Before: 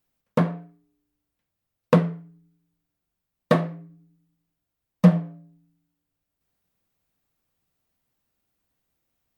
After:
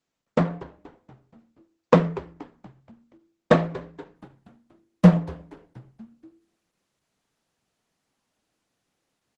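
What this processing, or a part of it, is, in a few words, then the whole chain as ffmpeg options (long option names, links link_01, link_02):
video call: -filter_complex "[0:a]asplit=3[link_01][link_02][link_03];[link_01]afade=type=out:start_time=0.58:duration=0.02[link_04];[link_02]highpass=frequency=120:poles=1,afade=type=in:start_time=0.58:duration=0.02,afade=type=out:start_time=2.07:duration=0.02[link_05];[link_03]afade=type=in:start_time=2.07:duration=0.02[link_06];[link_04][link_05][link_06]amix=inputs=3:normalize=0,highshelf=frequency=4500:gain=-2,asplit=6[link_07][link_08][link_09][link_10][link_11][link_12];[link_08]adelay=238,afreqshift=-100,volume=-17dB[link_13];[link_09]adelay=476,afreqshift=-200,volume=-22.7dB[link_14];[link_10]adelay=714,afreqshift=-300,volume=-28.4dB[link_15];[link_11]adelay=952,afreqshift=-400,volume=-34dB[link_16];[link_12]adelay=1190,afreqshift=-500,volume=-39.7dB[link_17];[link_07][link_13][link_14][link_15][link_16][link_17]amix=inputs=6:normalize=0,highpass=160,dynaudnorm=framelen=410:gausssize=5:maxgain=5dB,volume=1dB" -ar 48000 -c:a libopus -b:a 12k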